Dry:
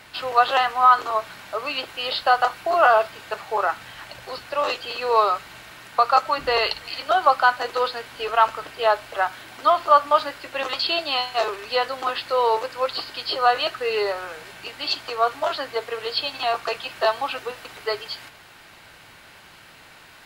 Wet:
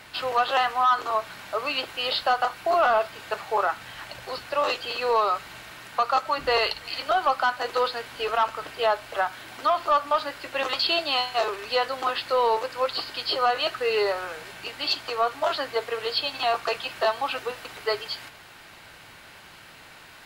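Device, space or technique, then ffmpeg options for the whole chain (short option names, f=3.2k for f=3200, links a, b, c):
soft clipper into limiter: -af "asoftclip=type=tanh:threshold=-9dB,alimiter=limit=-14dB:level=0:latency=1:release=267"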